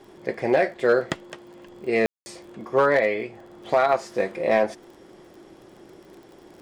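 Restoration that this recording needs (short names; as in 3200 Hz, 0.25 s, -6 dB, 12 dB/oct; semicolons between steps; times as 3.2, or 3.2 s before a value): clip repair -10.5 dBFS; de-click; room tone fill 2.06–2.26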